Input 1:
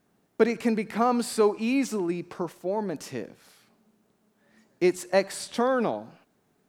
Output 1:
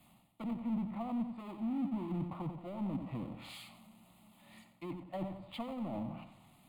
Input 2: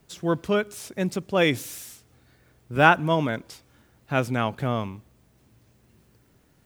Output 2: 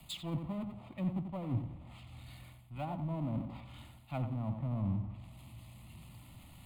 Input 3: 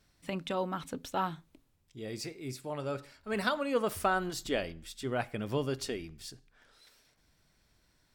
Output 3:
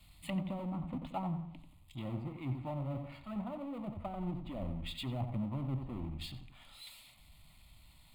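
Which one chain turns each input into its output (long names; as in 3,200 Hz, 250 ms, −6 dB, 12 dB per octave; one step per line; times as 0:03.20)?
reversed playback
downward compressor 12 to 1, threshold −34 dBFS
reversed playback
treble cut that deepens with the level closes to 410 Hz, closed at −35.5 dBFS
on a send: feedback echo with a low-pass in the loop 89 ms, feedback 38%, low-pass 2,300 Hz, level −9.5 dB
on the sum: power curve on the samples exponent 0.7
phaser with its sweep stopped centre 1,600 Hz, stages 6
multiband upward and downward expander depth 40%
level +4 dB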